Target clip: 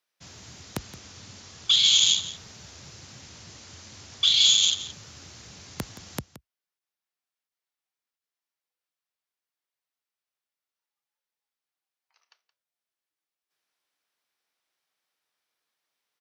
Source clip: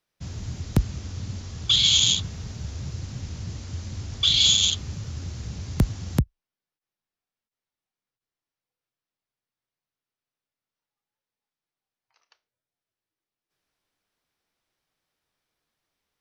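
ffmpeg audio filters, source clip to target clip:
ffmpeg -i in.wav -af "highpass=frequency=810:poles=1,aecho=1:1:172:0.178" out.wav

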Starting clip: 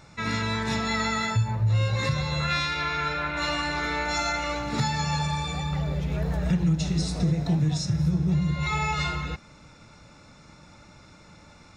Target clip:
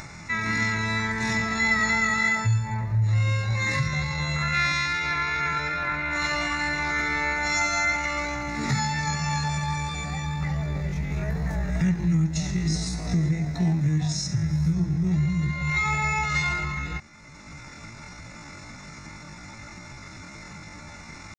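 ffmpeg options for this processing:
ffmpeg -i in.wav -af "acompressor=mode=upward:threshold=-32dB:ratio=2.5,equalizer=frequency=500:width_type=o:width=0.33:gain=-8,equalizer=frequency=2000:width_type=o:width=0.33:gain=10,equalizer=frequency=3150:width_type=o:width=0.33:gain=-9,equalizer=frequency=6300:width_type=o:width=0.33:gain=6,atempo=0.55" out.wav

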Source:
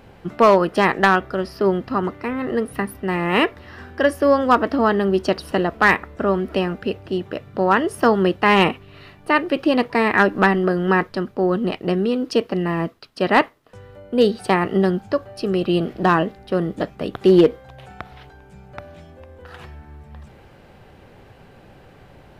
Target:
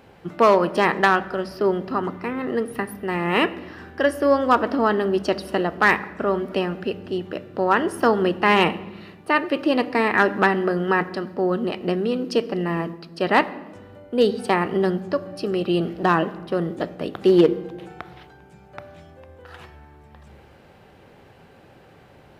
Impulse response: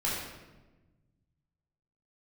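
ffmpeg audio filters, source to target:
-filter_complex "[0:a]highpass=frequency=160:poles=1,asplit=2[link_01][link_02];[1:a]atrim=start_sample=2205,lowshelf=frequency=250:gain=10[link_03];[link_02][link_03]afir=irnorm=-1:irlink=0,volume=-22dB[link_04];[link_01][link_04]amix=inputs=2:normalize=0,volume=-2.5dB"

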